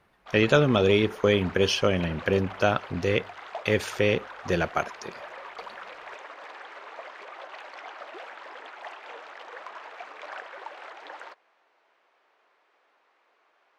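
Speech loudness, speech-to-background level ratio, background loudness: -24.5 LUFS, 17.0 dB, -41.5 LUFS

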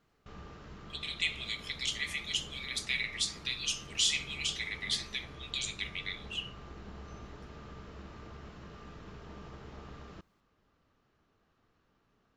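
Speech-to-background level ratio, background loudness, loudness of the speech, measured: 15.5 dB, -49.5 LUFS, -34.0 LUFS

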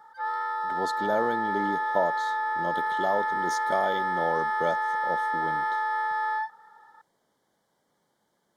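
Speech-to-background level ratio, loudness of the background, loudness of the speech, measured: -4.5 dB, -28.0 LUFS, -32.5 LUFS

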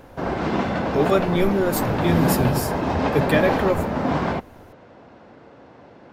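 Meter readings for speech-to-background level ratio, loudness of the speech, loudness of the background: 1.5 dB, -22.5 LUFS, -24.0 LUFS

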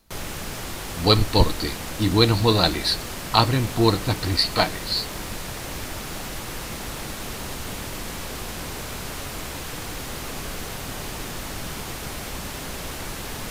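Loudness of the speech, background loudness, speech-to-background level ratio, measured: -21.5 LUFS, -32.0 LUFS, 10.5 dB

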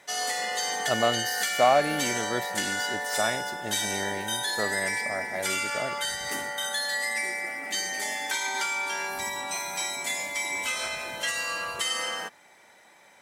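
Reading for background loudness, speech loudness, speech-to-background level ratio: -28.5 LUFS, -30.5 LUFS, -2.0 dB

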